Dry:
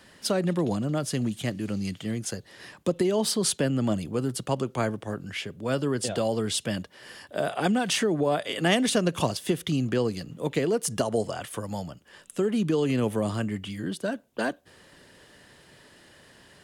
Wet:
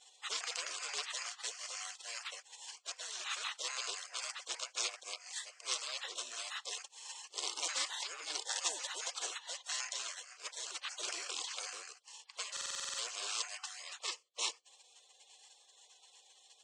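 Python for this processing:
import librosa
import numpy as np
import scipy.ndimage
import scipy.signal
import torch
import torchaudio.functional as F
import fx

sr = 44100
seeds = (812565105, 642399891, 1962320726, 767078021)

y = fx.band_invert(x, sr, width_hz=1000)
y = fx.fixed_phaser(y, sr, hz=1600.0, stages=4)
y = 10.0 ** (-28.0 / 20.0) * np.tanh(y / 10.0 ** (-28.0 / 20.0))
y = scipy.signal.sosfilt(scipy.signal.butter(4, 1100.0, 'highpass', fs=sr, output='sos'), y)
y = fx.peak_eq(y, sr, hz=4900.0, db=11.0, octaves=0.51)
y = fx.spec_gate(y, sr, threshold_db=-25, keep='weak')
y = scipy.signal.sosfilt(scipy.signal.butter(8, 8100.0, 'lowpass', fs=sr, output='sos'), y)
y = fx.buffer_glitch(y, sr, at_s=(12.52,), block=2048, repeats=9)
y = fx.sustainer(y, sr, db_per_s=29.0, at=(11.01, 11.7))
y = y * librosa.db_to_amplitude(18.0)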